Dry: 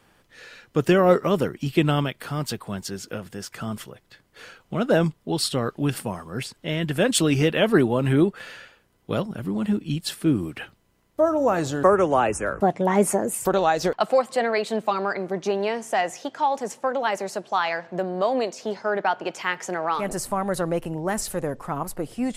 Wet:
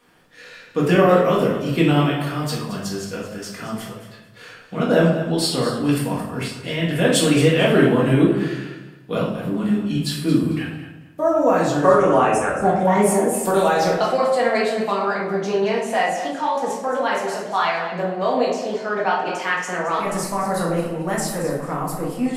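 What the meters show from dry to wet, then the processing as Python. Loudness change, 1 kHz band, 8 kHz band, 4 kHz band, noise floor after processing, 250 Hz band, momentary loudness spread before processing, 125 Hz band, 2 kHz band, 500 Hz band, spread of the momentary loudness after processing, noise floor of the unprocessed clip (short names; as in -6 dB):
+4.0 dB, +4.0 dB, +2.5 dB, +3.5 dB, -44 dBFS, +4.5 dB, 12 LU, +4.5 dB, +4.5 dB, +4.0 dB, 12 LU, -64 dBFS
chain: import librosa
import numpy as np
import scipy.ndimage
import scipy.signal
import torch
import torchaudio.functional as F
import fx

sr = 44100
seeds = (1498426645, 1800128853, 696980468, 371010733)

y = fx.low_shelf(x, sr, hz=100.0, db=-11.0)
y = fx.echo_feedback(y, sr, ms=222, feedback_pct=23, wet_db=-12.5)
y = fx.room_shoebox(y, sr, seeds[0], volume_m3=230.0, walls='mixed', distance_m=1.8)
y = F.gain(torch.from_numpy(y), -2.0).numpy()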